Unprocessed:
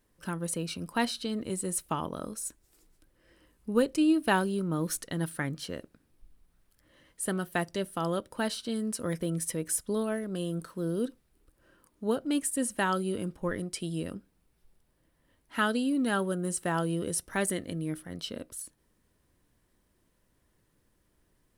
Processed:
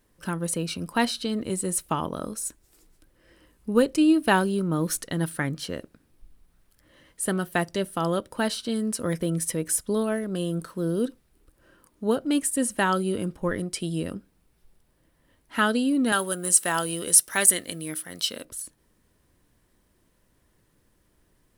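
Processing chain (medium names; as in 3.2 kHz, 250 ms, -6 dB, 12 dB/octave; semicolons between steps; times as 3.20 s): 16.12–18.45 s: tilt EQ +3.5 dB/octave; trim +5 dB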